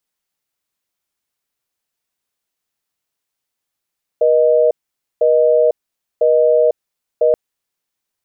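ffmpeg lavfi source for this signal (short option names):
-f lavfi -i "aevalsrc='0.251*(sin(2*PI*480*t)+sin(2*PI*620*t))*clip(min(mod(t,1),0.5-mod(t,1))/0.005,0,1)':d=3.13:s=44100"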